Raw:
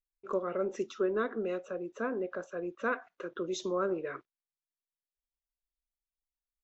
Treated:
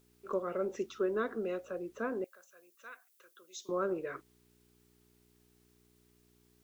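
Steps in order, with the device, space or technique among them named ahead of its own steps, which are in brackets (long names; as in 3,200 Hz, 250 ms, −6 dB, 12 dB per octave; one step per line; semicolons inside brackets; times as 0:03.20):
video cassette with head-switching buzz (hum with harmonics 60 Hz, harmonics 7, −67 dBFS −1 dB per octave; white noise bed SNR 35 dB)
0:02.24–0:03.69: first difference
level −2 dB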